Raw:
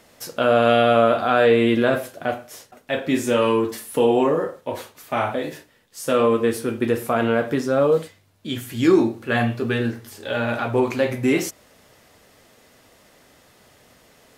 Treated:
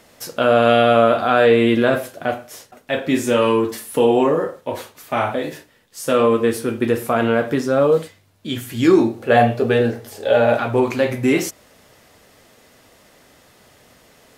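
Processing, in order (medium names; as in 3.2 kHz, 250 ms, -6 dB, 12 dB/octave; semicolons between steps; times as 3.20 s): 9.18–10.57 s: high-order bell 590 Hz +9.5 dB 1.1 oct; trim +2.5 dB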